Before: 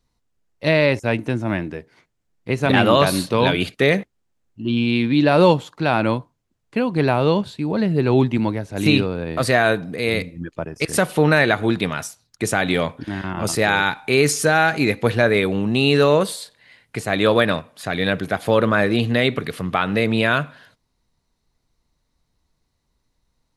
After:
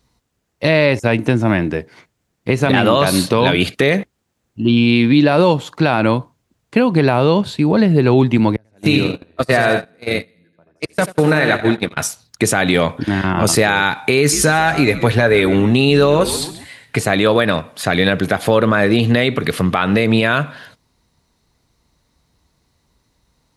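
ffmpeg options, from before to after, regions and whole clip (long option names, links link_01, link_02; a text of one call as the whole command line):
ffmpeg -i in.wav -filter_complex "[0:a]asettb=1/sr,asplit=3[link_01][link_02][link_03];[link_01]atrim=end=8.564[link_04];[link_02]atrim=start=8.56:end=11.97,asetpts=PTS-STARTPTS,afade=type=in:duration=0.004:curve=qsin,afade=type=out:start_time=3.406:duration=0.004:curve=qsin,aecho=1:1:84|168|252|336|420|504|588:0.447|0.259|0.15|0.0872|0.0505|0.0293|0.017,atrim=end_sample=150381,flanger=delay=3:depth=3.1:regen=-72:speed=1.3:shape=sinusoidal,agate=range=-32dB:threshold=-24dB:ratio=16:release=100:detection=peak[link_05];[link_03]atrim=start=11.966[link_06];[link_04][link_05]acrossfade=duration=0.004:curve1=hsin:curve2=qsin[link_07];[link_07][link_06]acrossfade=duration=0.004:curve1=qsin:curve2=hsin,asettb=1/sr,asplit=3[link_08][link_09][link_10];[link_08]atrim=end=14.184[link_11];[link_09]atrim=start=14.18:end=16.99,asetpts=PTS-STARTPTS,afade=type=in:duration=0.004:curve=qsin,afade=type=out:start_time=2.806:duration=0.004:curve=qsin,aecho=1:1:7.3:0.39,atrim=end_sample=123921,asplit=4[link_12][link_13][link_14][link_15];[link_13]adelay=137,afreqshift=-91,volume=-17dB[link_16];[link_14]adelay=274,afreqshift=-182,volume=-24.7dB[link_17];[link_15]adelay=411,afreqshift=-273,volume=-32.5dB[link_18];[link_12][link_16][link_17][link_18]amix=inputs=4:normalize=0,atrim=end_sample=123921[link_19];[link_10]atrim=start=16.986[link_20];[link_11][link_19]acrossfade=duration=0.004:curve1=hsin:curve2=qsin[link_21];[link_21][link_20]acrossfade=duration=0.004:curve1=qsin:curve2=hsin,highpass=47,acompressor=threshold=-21dB:ratio=2.5,alimiter=level_in=11.5dB:limit=-1dB:release=50:level=0:latency=1,volume=-1dB" out.wav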